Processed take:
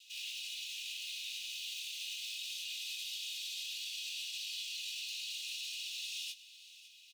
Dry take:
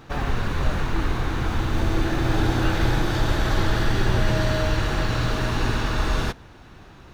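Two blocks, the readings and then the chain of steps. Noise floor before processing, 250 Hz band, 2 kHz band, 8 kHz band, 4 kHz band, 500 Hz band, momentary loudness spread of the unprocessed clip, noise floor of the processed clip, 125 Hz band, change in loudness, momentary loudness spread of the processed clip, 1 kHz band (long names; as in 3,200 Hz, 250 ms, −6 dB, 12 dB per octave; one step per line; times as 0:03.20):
−46 dBFS, below −40 dB, −16.5 dB, −3.0 dB, −4.0 dB, below −40 dB, 4 LU, −57 dBFS, below −40 dB, −15.0 dB, 2 LU, below −40 dB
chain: lower of the sound and its delayed copy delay 2.4 ms
Chebyshev high-pass filter 2,600 Hz, order 6
brickwall limiter −35 dBFS, peak gain reduction 10 dB
double-tracking delay 21 ms −6.5 dB
on a send: single-tap delay 555 ms −17.5 dB
on the sum: level +1 dB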